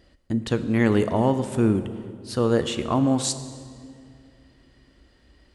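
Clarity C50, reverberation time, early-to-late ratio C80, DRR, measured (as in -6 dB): 11.5 dB, 2.3 s, 12.5 dB, 10.0 dB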